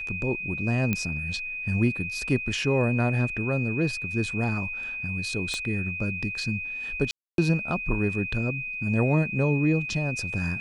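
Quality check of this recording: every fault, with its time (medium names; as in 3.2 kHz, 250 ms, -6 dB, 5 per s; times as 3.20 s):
whine 2.5 kHz -31 dBFS
0.93 s: pop -12 dBFS
5.54 s: pop -18 dBFS
7.11–7.38 s: dropout 272 ms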